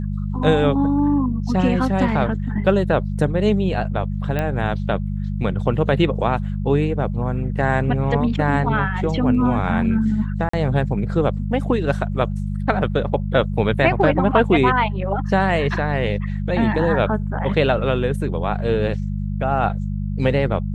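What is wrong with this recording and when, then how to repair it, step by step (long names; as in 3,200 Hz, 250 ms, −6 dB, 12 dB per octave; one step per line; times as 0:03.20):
mains hum 50 Hz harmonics 4 −24 dBFS
0:04.39: click −11 dBFS
0:10.49–0:10.53: drop-out 44 ms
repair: click removal
hum removal 50 Hz, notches 4
repair the gap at 0:10.49, 44 ms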